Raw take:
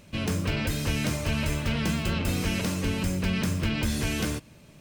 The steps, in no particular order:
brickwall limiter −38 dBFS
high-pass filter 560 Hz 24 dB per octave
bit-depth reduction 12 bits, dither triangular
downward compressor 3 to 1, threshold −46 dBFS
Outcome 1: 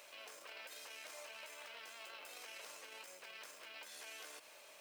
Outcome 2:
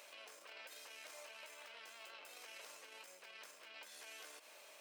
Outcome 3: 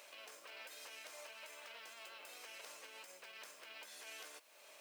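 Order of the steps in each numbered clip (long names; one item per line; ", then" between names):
brickwall limiter, then high-pass filter, then bit-depth reduction, then downward compressor
bit-depth reduction, then brickwall limiter, then downward compressor, then high-pass filter
downward compressor, then brickwall limiter, then bit-depth reduction, then high-pass filter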